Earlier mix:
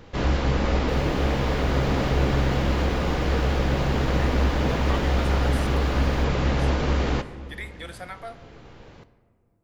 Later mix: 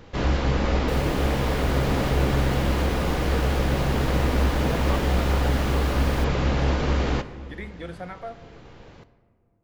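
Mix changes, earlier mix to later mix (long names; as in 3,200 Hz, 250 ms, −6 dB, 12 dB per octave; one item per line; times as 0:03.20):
speech: add spectral tilt −4 dB per octave
second sound +11.0 dB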